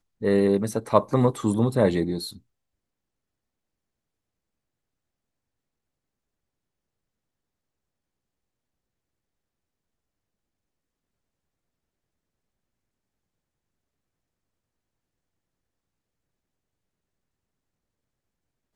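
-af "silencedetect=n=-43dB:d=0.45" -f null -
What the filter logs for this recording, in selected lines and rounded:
silence_start: 2.38
silence_end: 18.75 | silence_duration: 16.37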